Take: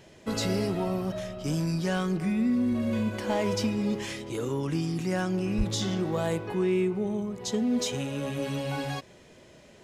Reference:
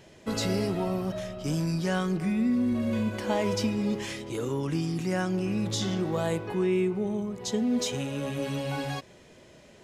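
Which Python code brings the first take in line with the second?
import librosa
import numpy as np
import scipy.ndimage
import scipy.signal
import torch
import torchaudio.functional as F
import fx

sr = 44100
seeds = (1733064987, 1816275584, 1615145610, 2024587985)

y = fx.fix_declip(x, sr, threshold_db=-19.0)
y = fx.highpass(y, sr, hz=140.0, slope=24, at=(5.57, 5.69), fade=0.02)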